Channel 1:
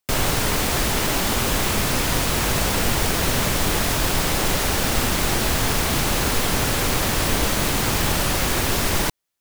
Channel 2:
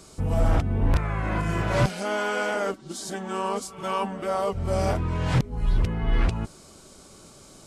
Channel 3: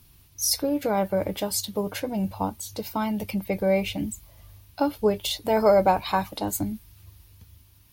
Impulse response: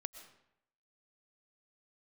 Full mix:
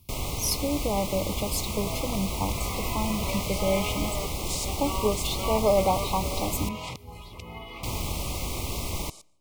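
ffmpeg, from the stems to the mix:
-filter_complex "[0:a]volume=-12.5dB,asplit=3[a][b][c];[a]atrim=end=6.69,asetpts=PTS-STARTPTS,afade=t=out:st=6.686:d=0.004:c=hsin[d];[b]atrim=start=6.69:end=7.83,asetpts=PTS-STARTPTS,volume=0[e];[c]atrim=start=7.83,asetpts=PTS-STARTPTS,afade=t=in:d=0.004:c=hsin[f];[d][e][f]concat=n=3:v=0:a=1,asplit=2[g][h];[h]volume=-19.5dB[i];[1:a]alimiter=limit=-21dB:level=0:latency=1:release=175,highpass=f=1.3k:p=1,adelay=1550,volume=2dB,asplit=2[j][k];[k]volume=-10.5dB[l];[2:a]volume=-4dB[m];[3:a]atrim=start_sample=2205[n];[i][l]amix=inputs=2:normalize=0[o];[o][n]afir=irnorm=-1:irlink=0[p];[g][j][m][p]amix=inputs=4:normalize=0,asuperstop=centerf=1600:order=12:qfactor=2,equalizer=f=62:t=o:w=1.4:g=8"

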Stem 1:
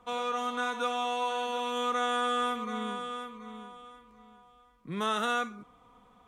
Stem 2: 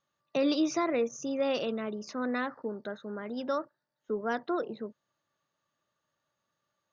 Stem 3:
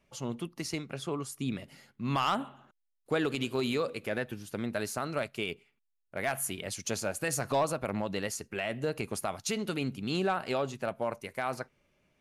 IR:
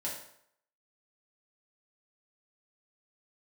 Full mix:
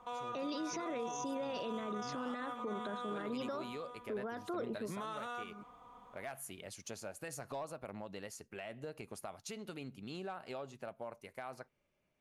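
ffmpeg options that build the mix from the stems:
-filter_complex "[0:a]equalizer=f=970:t=o:w=0.87:g=5.5,acompressor=threshold=-30dB:ratio=6,volume=-3.5dB[a];[1:a]acompressor=threshold=-30dB:ratio=6,volume=-1dB[b];[2:a]volume=-11dB[c];[a][c]amix=inputs=2:normalize=0,equalizer=f=710:t=o:w=1.5:g=3.5,acompressor=threshold=-44dB:ratio=2,volume=0dB[d];[b][d]amix=inputs=2:normalize=0,alimiter=level_in=8dB:limit=-24dB:level=0:latency=1:release=12,volume=-8dB"

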